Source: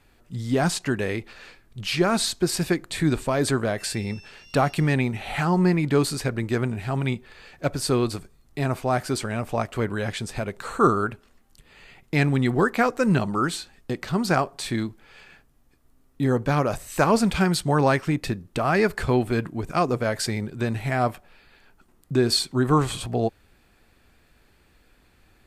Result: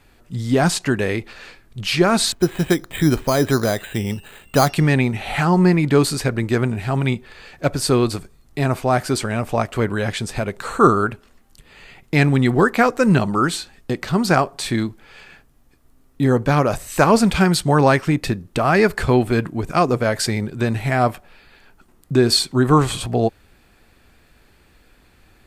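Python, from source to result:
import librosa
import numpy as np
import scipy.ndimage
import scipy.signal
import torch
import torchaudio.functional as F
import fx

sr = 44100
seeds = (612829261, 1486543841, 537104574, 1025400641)

y = fx.resample_bad(x, sr, factor=8, down='filtered', up='hold', at=(2.32, 4.69))
y = y * 10.0 ** (5.5 / 20.0)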